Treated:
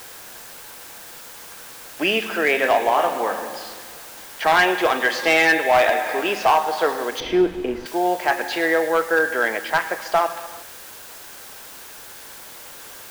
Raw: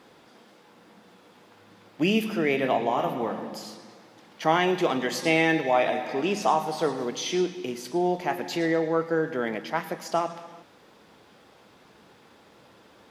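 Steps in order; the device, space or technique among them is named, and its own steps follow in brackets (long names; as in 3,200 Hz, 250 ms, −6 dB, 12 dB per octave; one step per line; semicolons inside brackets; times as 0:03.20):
drive-through speaker (band-pass filter 530–3,800 Hz; parametric band 1,600 Hz +8.5 dB 0.22 octaves; hard clipping −19 dBFS, distortion −14 dB; white noise bed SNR 18 dB)
0:07.20–0:07.86: spectral tilt −4.5 dB per octave
level +9 dB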